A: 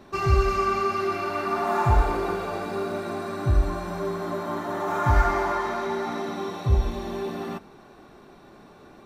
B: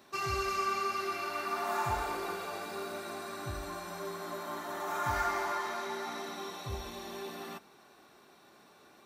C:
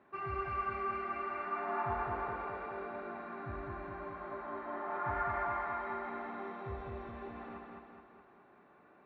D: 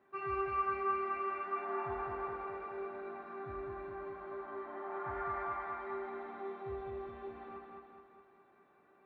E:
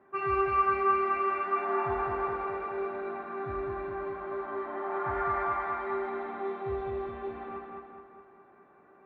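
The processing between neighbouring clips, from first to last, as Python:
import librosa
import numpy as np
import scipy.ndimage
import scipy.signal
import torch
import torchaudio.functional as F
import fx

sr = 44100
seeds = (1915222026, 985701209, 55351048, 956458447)

y1 = scipy.signal.sosfilt(scipy.signal.butter(2, 52.0, 'highpass', fs=sr, output='sos'), x)
y1 = fx.tilt_eq(y1, sr, slope=3.0)
y1 = y1 * librosa.db_to_amplitude(-8.0)
y2 = scipy.signal.sosfilt(scipy.signal.butter(4, 2100.0, 'lowpass', fs=sr, output='sos'), y1)
y2 = fx.echo_feedback(y2, sr, ms=210, feedback_pct=54, wet_db=-3)
y2 = y2 * librosa.db_to_amplitude(-4.5)
y3 = fx.comb_fb(y2, sr, f0_hz=390.0, decay_s=0.21, harmonics='all', damping=0.0, mix_pct=80)
y3 = y3 * librosa.db_to_amplitude(5.5)
y4 = fx.env_lowpass(y3, sr, base_hz=1800.0, full_db=-34.0)
y4 = y4 * librosa.db_to_amplitude(8.5)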